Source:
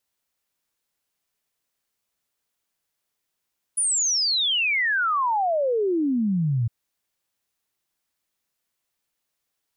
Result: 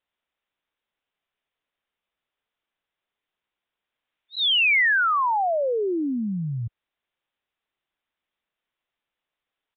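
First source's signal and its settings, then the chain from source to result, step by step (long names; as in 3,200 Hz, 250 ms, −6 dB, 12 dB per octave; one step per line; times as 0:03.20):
exponential sine sweep 10,000 Hz → 110 Hz 2.91 s −19.5 dBFS
dynamic equaliser 2,200 Hz, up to +4 dB, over −35 dBFS, Q 1
downsampling to 8,000 Hz
parametric band 120 Hz −5.5 dB 2.4 octaves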